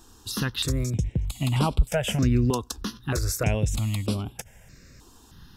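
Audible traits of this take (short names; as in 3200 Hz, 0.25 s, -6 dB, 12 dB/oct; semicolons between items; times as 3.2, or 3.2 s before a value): notches that jump at a steady rate 3.2 Hz 570–6400 Hz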